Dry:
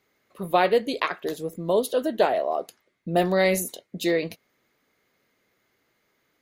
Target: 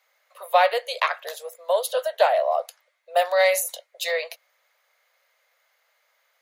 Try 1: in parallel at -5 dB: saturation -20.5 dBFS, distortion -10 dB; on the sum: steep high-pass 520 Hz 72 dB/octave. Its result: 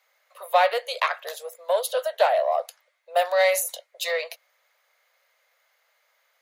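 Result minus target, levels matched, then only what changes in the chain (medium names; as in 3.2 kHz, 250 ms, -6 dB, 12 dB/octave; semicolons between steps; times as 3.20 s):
saturation: distortion +12 dB
change: saturation -10.5 dBFS, distortion -22 dB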